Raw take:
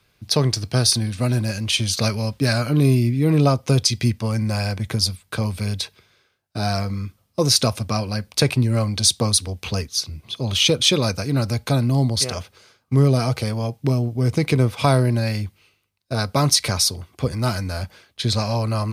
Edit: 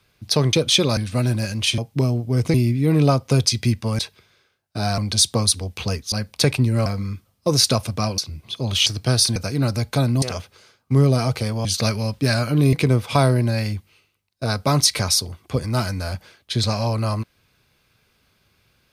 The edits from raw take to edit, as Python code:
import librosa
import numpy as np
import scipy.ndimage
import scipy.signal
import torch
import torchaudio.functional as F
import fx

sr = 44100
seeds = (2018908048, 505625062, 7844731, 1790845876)

y = fx.edit(x, sr, fx.swap(start_s=0.53, length_s=0.5, other_s=10.66, other_length_s=0.44),
    fx.swap(start_s=1.84, length_s=1.08, other_s=13.66, other_length_s=0.76),
    fx.cut(start_s=4.37, length_s=1.42),
    fx.swap(start_s=6.78, length_s=1.32, other_s=8.84, other_length_s=1.14),
    fx.cut(start_s=11.96, length_s=0.27), tone=tone)